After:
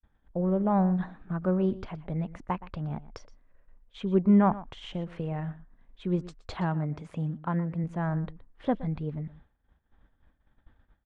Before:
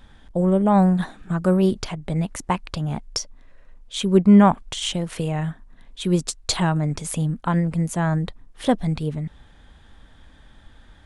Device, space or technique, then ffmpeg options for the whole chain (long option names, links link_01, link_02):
hearing-loss simulation: -filter_complex "[0:a]lowpass=1900,agate=range=-33dB:threshold=-46dB:ratio=3:detection=peak,asettb=1/sr,asplit=3[link_01][link_02][link_03];[link_01]atrim=end=6.544[link_04];[link_02]atrim=start=6.54:end=7.84,asetpts=PTS-STARTPTS,afade=type=in:duration=0.004:curve=qsin,afade=type=out:start_time=1.296:duration=0.004:curve=qsin,highpass=61[link_05];[link_03]atrim=start=7.836[link_06];[link_04][link_05]acrossfade=duration=0.004:curve1=hsin:curve2=qsin[link_07];[link_07][link_06]acrossfade=duration=0.004:curve1=qsin:curve2=hsin,agate=range=-33dB:threshold=-40dB:ratio=3:detection=peak,aecho=1:1:120:0.141,volume=-8dB"